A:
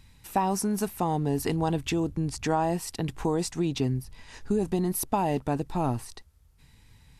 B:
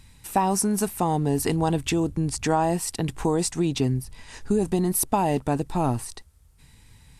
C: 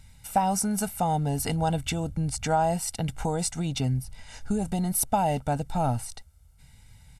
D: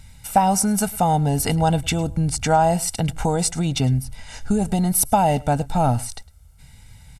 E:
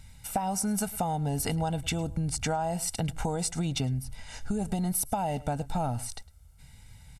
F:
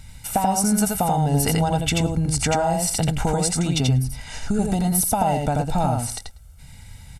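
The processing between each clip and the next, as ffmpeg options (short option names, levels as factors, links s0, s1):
-af "equalizer=f=8800:t=o:w=0.58:g=6.5,volume=1.5"
-af "aecho=1:1:1.4:0.73,volume=0.631"
-af "aecho=1:1:106:0.075,volume=2.24"
-af "acompressor=threshold=0.1:ratio=10,volume=0.531"
-af "aecho=1:1:85:0.708,volume=2.37"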